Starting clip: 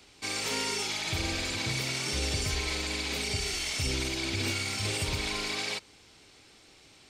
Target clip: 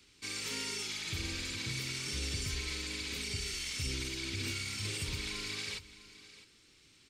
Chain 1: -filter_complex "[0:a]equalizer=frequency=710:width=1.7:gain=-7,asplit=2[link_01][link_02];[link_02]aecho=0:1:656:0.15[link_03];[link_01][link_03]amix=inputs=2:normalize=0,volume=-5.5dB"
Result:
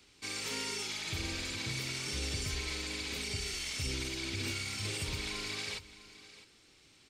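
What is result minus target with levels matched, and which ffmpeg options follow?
1,000 Hz band +3.5 dB
-filter_complex "[0:a]equalizer=frequency=710:width=1.7:gain=-16.5,asplit=2[link_01][link_02];[link_02]aecho=0:1:656:0.15[link_03];[link_01][link_03]amix=inputs=2:normalize=0,volume=-5.5dB"

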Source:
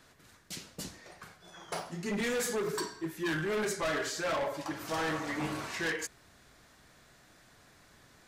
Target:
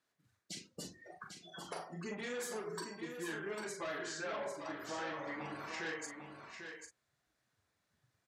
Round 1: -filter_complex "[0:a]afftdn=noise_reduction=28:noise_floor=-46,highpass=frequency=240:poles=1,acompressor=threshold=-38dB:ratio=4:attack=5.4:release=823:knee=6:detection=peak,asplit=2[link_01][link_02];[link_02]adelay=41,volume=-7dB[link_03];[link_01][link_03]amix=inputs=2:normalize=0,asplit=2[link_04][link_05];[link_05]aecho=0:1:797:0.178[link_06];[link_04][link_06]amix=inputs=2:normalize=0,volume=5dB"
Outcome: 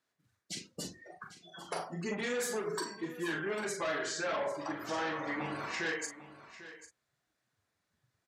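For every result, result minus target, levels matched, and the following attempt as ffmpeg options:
downward compressor: peak gain reduction −7 dB; echo-to-direct −8 dB
-filter_complex "[0:a]afftdn=noise_reduction=28:noise_floor=-46,highpass=frequency=240:poles=1,acompressor=threshold=-47dB:ratio=4:attack=5.4:release=823:knee=6:detection=peak,asplit=2[link_01][link_02];[link_02]adelay=41,volume=-7dB[link_03];[link_01][link_03]amix=inputs=2:normalize=0,asplit=2[link_04][link_05];[link_05]aecho=0:1:797:0.178[link_06];[link_04][link_06]amix=inputs=2:normalize=0,volume=5dB"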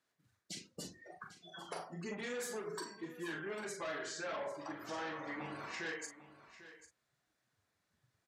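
echo-to-direct −8 dB
-filter_complex "[0:a]afftdn=noise_reduction=28:noise_floor=-46,highpass=frequency=240:poles=1,acompressor=threshold=-47dB:ratio=4:attack=5.4:release=823:knee=6:detection=peak,asplit=2[link_01][link_02];[link_02]adelay=41,volume=-7dB[link_03];[link_01][link_03]amix=inputs=2:normalize=0,asplit=2[link_04][link_05];[link_05]aecho=0:1:797:0.447[link_06];[link_04][link_06]amix=inputs=2:normalize=0,volume=5dB"

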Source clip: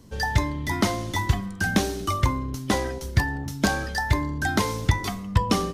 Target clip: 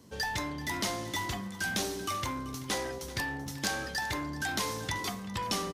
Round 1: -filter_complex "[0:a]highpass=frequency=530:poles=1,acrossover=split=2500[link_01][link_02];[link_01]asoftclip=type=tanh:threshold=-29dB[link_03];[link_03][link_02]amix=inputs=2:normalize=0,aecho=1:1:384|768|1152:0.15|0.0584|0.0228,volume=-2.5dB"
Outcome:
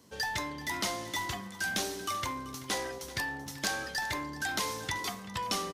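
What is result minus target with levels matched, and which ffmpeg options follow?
250 Hz band −3.0 dB
-filter_complex "[0:a]highpass=frequency=210:poles=1,acrossover=split=2500[link_01][link_02];[link_01]asoftclip=type=tanh:threshold=-29dB[link_03];[link_03][link_02]amix=inputs=2:normalize=0,aecho=1:1:384|768|1152:0.15|0.0584|0.0228,volume=-2.5dB"

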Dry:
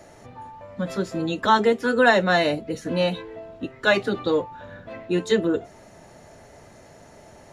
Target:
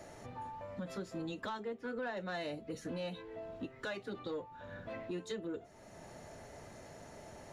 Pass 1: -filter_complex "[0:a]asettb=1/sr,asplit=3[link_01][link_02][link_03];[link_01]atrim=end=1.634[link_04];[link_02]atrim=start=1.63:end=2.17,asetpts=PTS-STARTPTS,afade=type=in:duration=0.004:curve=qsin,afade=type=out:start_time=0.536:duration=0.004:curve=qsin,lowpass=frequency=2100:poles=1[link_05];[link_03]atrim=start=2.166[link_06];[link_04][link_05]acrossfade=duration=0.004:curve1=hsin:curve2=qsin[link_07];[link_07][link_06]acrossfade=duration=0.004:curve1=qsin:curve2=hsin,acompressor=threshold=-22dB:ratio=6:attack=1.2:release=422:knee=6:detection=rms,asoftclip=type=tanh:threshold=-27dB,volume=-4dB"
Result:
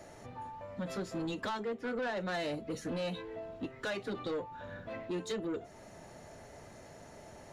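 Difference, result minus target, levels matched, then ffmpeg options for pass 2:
downward compressor: peak gain reduction −6.5 dB
-filter_complex "[0:a]asettb=1/sr,asplit=3[link_01][link_02][link_03];[link_01]atrim=end=1.634[link_04];[link_02]atrim=start=1.63:end=2.17,asetpts=PTS-STARTPTS,afade=type=in:duration=0.004:curve=qsin,afade=type=out:start_time=0.536:duration=0.004:curve=qsin,lowpass=frequency=2100:poles=1[link_05];[link_03]atrim=start=2.166[link_06];[link_04][link_05]acrossfade=duration=0.004:curve1=hsin:curve2=qsin[link_07];[link_07][link_06]acrossfade=duration=0.004:curve1=qsin:curve2=hsin,acompressor=threshold=-30dB:ratio=6:attack=1.2:release=422:knee=6:detection=rms,asoftclip=type=tanh:threshold=-27dB,volume=-4dB"

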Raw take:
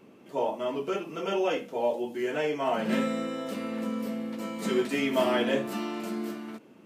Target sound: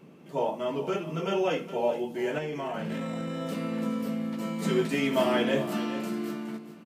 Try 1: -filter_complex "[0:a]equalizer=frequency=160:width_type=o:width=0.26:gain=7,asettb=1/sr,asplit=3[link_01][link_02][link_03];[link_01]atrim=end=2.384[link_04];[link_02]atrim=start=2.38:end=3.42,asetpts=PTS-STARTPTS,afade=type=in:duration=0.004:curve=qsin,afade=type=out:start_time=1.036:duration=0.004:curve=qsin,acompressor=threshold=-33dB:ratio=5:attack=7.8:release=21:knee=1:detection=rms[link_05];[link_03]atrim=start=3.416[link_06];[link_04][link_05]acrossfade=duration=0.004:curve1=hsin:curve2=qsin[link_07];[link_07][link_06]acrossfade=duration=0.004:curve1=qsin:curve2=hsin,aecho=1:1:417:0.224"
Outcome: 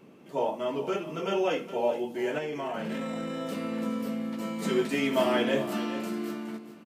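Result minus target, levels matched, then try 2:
125 Hz band −4.5 dB
-filter_complex "[0:a]equalizer=frequency=160:width_type=o:width=0.26:gain=16.5,asettb=1/sr,asplit=3[link_01][link_02][link_03];[link_01]atrim=end=2.384[link_04];[link_02]atrim=start=2.38:end=3.42,asetpts=PTS-STARTPTS,afade=type=in:duration=0.004:curve=qsin,afade=type=out:start_time=1.036:duration=0.004:curve=qsin,acompressor=threshold=-33dB:ratio=5:attack=7.8:release=21:knee=1:detection=rms[link_05];[link_03]atrim=start=3.416[link_06];[link_04][link_05]acrossfade=duration=0.004:curve1=hsin:curve2=qsin[link_07];[link_07][link_06]acrossfade=duration=0.004:curve1=qsin:curve2=hsin,aecho=1:1:417:0.224"

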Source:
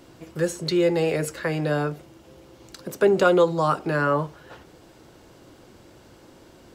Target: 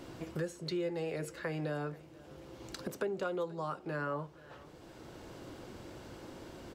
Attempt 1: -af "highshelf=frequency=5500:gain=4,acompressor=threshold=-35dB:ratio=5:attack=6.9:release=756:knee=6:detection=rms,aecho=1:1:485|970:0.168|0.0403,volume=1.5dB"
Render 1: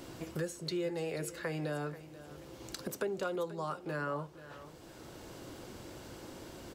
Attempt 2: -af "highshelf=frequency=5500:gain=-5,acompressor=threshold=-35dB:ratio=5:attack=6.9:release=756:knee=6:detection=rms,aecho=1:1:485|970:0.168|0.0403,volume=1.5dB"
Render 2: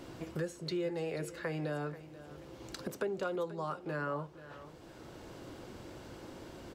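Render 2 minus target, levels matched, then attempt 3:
echo-to-direct +6 dB
-af "highshelf=frequency=5500:gain=-5,acompressor=threshold=-35dB:ratio=5:attack=6.9:release=756:knee=6:detection=rms,aecho=1:1:485|970:0.0841|0.0202,volume=1.5dB"

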